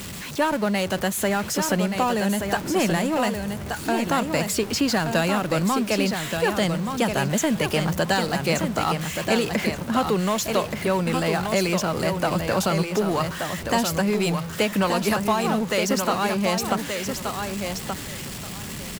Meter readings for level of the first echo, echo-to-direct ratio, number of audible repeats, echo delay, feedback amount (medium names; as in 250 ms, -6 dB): -6.0 dB, -6.0 dB, 2, 1177 ms, 18%